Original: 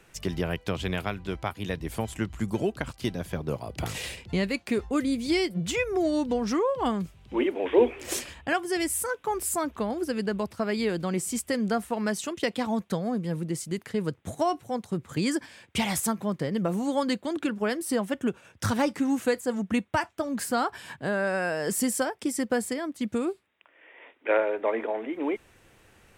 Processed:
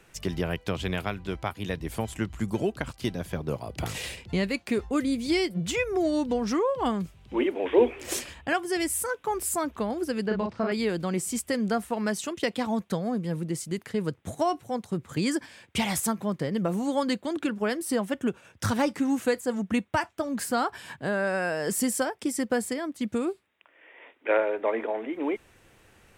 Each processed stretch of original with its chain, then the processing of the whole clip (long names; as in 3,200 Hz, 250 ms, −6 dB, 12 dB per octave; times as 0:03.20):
0:10.27–0:10.72: Gaussian smoothing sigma 1.7 samples + double-tracking delay 37 ms −3.5 dB
whole clip: no processing